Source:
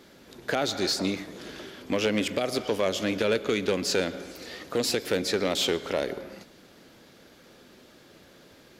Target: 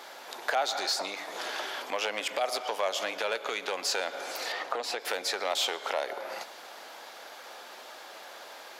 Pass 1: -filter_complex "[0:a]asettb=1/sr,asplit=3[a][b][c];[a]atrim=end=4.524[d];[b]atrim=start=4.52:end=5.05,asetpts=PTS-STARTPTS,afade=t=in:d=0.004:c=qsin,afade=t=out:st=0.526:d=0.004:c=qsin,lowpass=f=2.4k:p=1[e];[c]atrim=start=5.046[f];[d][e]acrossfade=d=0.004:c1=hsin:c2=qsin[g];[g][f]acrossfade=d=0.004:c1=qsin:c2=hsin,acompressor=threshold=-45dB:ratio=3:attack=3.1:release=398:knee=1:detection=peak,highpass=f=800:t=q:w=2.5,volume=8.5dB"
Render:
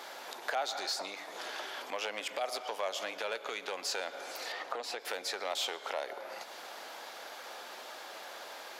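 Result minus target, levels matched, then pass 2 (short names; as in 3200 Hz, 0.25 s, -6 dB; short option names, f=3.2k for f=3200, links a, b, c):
compressor: peak gain reduction +5.5 dB
-filter_complex "[0:a]asettb=1/sr,asplit=3[a][b][c];[a]atrim=end=4.524[d];[b]atrim=start=4.52:end=5.05,asetpts=PTS-STARTPTS,afade=t=in:d=0.004:c=qsin,afade=t=out:st=0.526:d=0.004:c=qsin,lowpass=f=2.4k:p=1[e];[c]atrim=start=5.046[f];[d][e]acrossfade=d=0.004:c1=hsin:c2=qsin[g];[g][f]acrossfade=d=0.004:c1=qsin:c2=hsin,acompressor=threshold=-36.5dB:ratio=3:attack=3.1:release=398:knee=1:detection=peak,highpass=f=800:t=q:w=2.5,volume=8.5dB"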